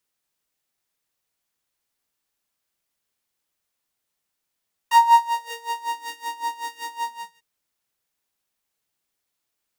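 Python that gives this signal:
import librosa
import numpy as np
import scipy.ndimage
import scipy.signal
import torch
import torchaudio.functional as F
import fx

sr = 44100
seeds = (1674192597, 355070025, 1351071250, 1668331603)

y = fx.sub_patch_tremolo(sr, seeds[0], note=82, wave='triangle', wave2='saw', interval_st=0, detune_cents=3, level2_db=0, sub_db=-28.5, noise_db=-18, kind='highpass', cutoff_hz=130.0, q=9.3, env_oct=3.0, env_decay_s=1.03, env_sustain_pct=40, attack_ms=5.9, decay_s=0.36, sustain_db=-9, release_s=0.4, note_s=2.1, lfo_hz=5.3, tremolo_db=19.0)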